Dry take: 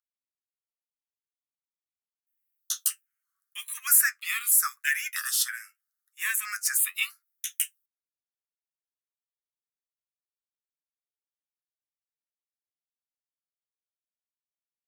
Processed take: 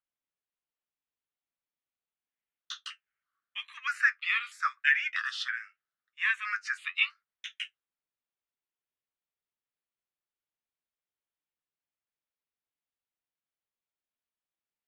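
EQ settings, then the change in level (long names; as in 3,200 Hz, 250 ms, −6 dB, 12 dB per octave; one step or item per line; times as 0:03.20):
low-pass filter 3,500 Hz 24 dB per octave
+2.5 dB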